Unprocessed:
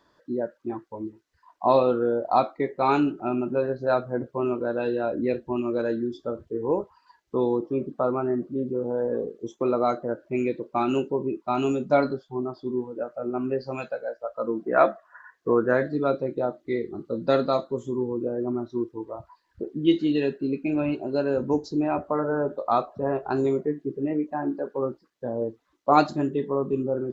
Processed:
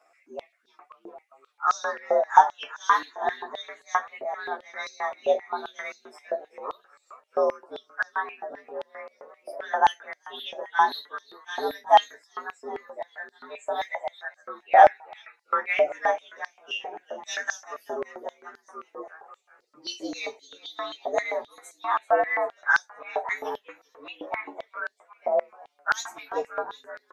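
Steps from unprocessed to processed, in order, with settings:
partials spread apart or drawn together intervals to 116%
echo with shifted repeats 384 ms, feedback 49%, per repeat +62 Hz, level −19 dB
high-pass on a step sequencer 7.6 Hz 660–4,600 Hz
level +1 dB

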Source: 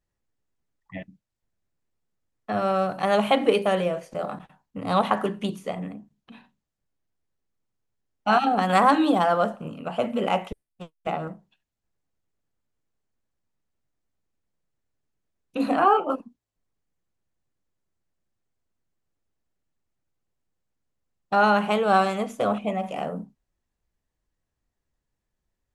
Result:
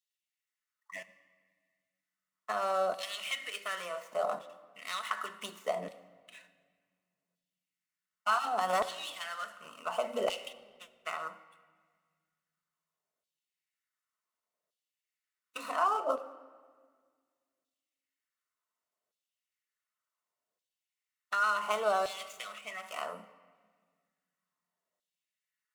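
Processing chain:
running median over 9 samples
downward compressor 6 to 1, threshold −25 dBFS, peak gain reduction 12 dB
bass and treble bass +9 dB, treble +10 dB
notch comb filter 820 Hz
auto-filter high-pass saw down 0.68 Hz 590–3,600 Hz
convolution reverb RT60 1.7 s, pre-delay 5 ms, DRR 10 dB
level −2.5 dB

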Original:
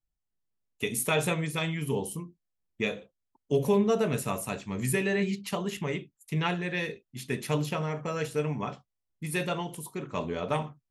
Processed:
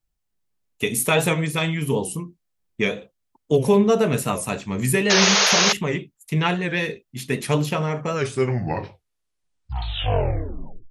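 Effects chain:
turntable brake at the end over 2.87 s
sound drawn into the spectrogram noise, 0:05.10–0:05.73, 380–6,800 Hz −25 dBFS
wow of a warped record 78 rpm, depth 100 cents
level +7.5 dB

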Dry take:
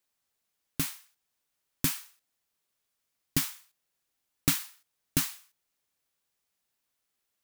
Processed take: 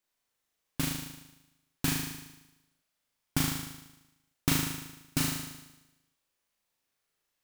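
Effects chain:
each half-wave held at its own peak
flutter between parallel walls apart 6.5 metres, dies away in 0.98 s
level −7 dB

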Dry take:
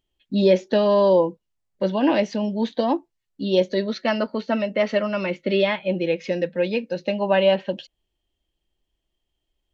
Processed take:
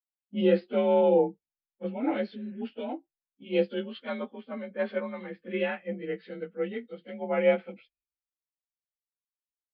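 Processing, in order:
partials spread apart or drawn together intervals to 90%
healed spectral selection 0:02.34–0:02.60, 540–2,900 Hz before
multiband upward and downward expander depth 100%
level −8 dB

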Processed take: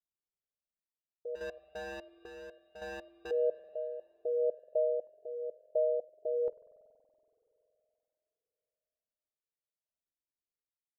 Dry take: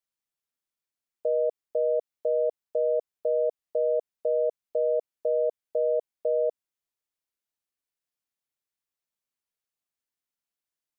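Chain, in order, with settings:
Butterworth low-pass 710 Hz 72 dB per octave
single-tap delay 83 ms −24 dB
0:01.35–0:03.31: gain into a clipping stage and back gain 34.5 dB
square-wave tremolo 0.71 Hz, depth 60%, duty 60%
spring reverb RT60 3.5 s, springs 47 ms, chirp 60 ms, DRR 15 dB
flanger whose copies keep moving one way rising 0.97 Hz

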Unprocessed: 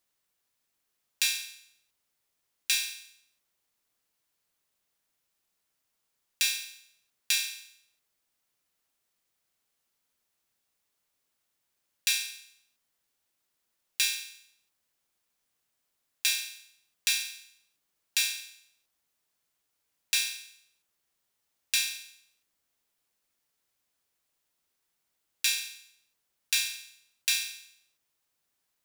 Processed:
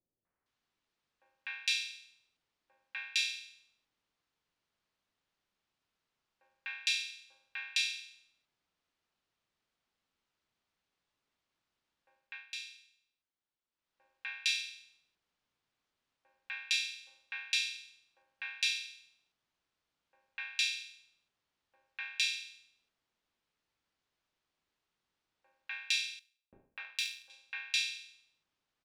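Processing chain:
low-pass filter 3,500 Hz 12 dB per octave
0:25.73–0:26.84: power curve on the samples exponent 1.4
three-band delay without the direct sound lows, mids, highs 250/460 ms, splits 570/2,000 Hz
0:12.13–0:14.04: duck −11 dB, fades 0.34 s linear
level +1.5 dB

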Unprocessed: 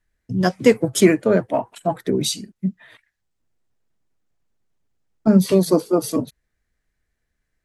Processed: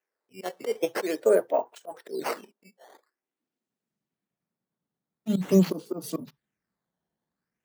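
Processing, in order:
volume swells 164 ms
sample-and-hold swept by an LFO 10×, swing 160% 0.46 Hz
high-pass filter sweep 460 Hz → 170 Hz, 0:02.77–0:03.94
on a send: convolution reverb, pre-delay 3 ms, DRR 20.5 dB
on the sum: level −8 dB

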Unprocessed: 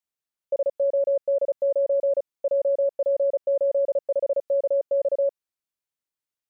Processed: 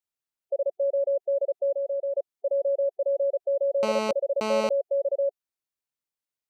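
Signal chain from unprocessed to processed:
gate on every frequency bin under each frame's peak −25 dB strong
0:01.75–0:02.15: spectral tilt +4.5 dB per octave
0:03.83–0:04.69: phone interference −25 dBFS
level −2.5 dB

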